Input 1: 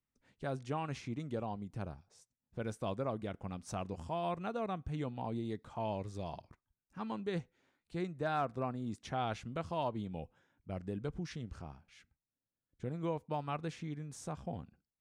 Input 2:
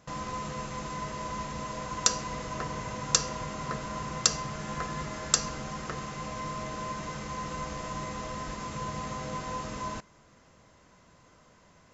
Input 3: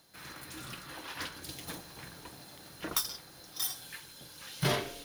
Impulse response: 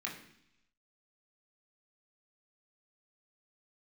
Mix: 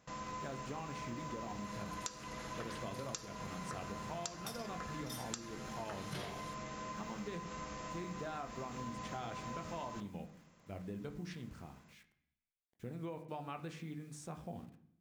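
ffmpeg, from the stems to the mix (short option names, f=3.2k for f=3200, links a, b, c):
-filter_complex "[0:a]acrusher=bits=10:mix=0:aa=0.000001,volume=-5.5dB,asplit=2[a][b];[b]volume=-4dB[c];[1:a]volume=-9.5dB,asplit=2[d][e];[e]volume=-7dB[f];[2:a]lowpass=11k,adelay=1500,volume=-9dB[g];[3:a]atrim=start_sample=2205[h];[c][f]amix=inputs=2:normalize=0[i];[i][h]afir=irnorm=-1:irlink=0[j];[a][d][g][j]amix=inputs=4:normalize=0,acompressor=threshold=-39dB:ratio=10"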